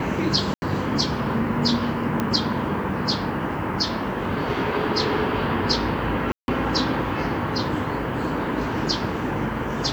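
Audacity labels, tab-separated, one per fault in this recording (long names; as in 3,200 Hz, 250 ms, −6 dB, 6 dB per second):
0.540000	0.620000	drop-out 80 ms
2.200000	2.200000	click −10 dBFS
6.320000	6.480000	drop-out 161 ms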